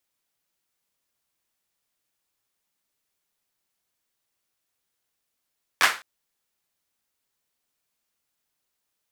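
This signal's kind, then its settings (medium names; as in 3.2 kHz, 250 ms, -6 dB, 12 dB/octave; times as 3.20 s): hand clap length 0.21 s, bursts 3, apart 11 ms, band 1.5 kHz, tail 0.32 s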